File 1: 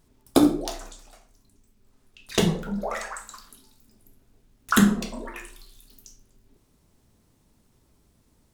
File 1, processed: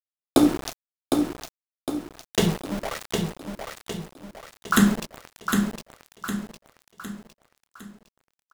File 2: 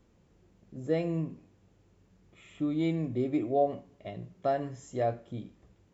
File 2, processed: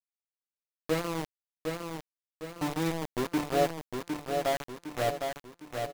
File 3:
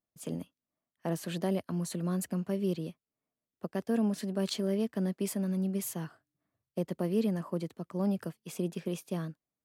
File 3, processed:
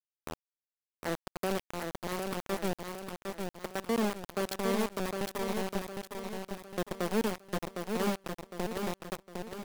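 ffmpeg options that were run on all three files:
ffmpeg -i in.wav -af "aeval=exprs='val(0)*gte(abs(val(0)),0.0447)':channel_layout=same,aecho=1:1:758|1516|2274|3032|3790|4548:0.562|0.253|0.114|0.0512|0.0231|0.0104" out.wav

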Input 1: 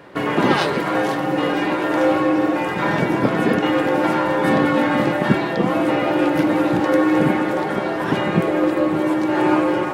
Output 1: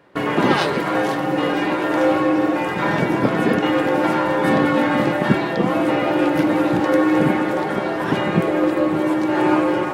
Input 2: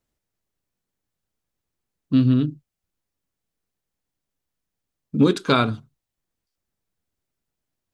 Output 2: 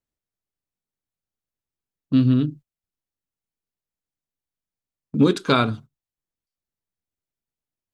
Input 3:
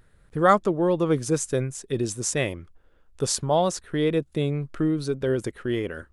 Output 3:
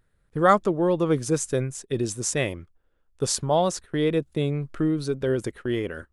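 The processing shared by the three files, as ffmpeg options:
ffmpeg -i in.wav -af "agate=range=-10dB:threshold=-39dB:ratio=16:detection=peak" out.wav

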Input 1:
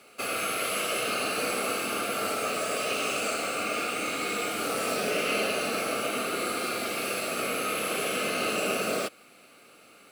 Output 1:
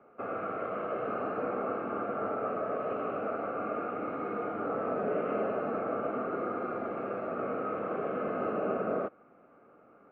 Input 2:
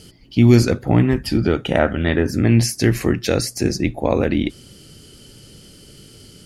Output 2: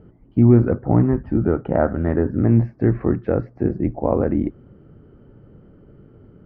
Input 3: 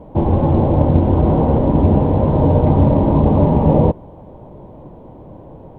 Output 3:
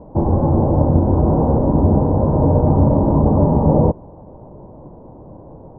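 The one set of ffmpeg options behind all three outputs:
ffmpeg -i in.wav -af "lowpass=frequency=1300:width=0.5412,lowpass=frequency=1300:width=1.3066,volume=-1dB" out.wav

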